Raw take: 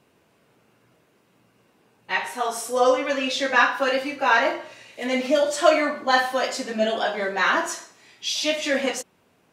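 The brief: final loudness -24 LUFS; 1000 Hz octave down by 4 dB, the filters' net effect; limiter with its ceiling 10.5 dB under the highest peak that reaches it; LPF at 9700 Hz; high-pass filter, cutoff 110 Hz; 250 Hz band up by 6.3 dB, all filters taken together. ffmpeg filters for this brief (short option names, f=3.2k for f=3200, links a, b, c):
-af "highpass=110,lowpass=9.7k,equalizer=f=250:t=o:g=7.5,equalizer=f=1k:t=o:g=-6,volume=1dB,alimiter=limit=-13.5dB:level=0:latency=1"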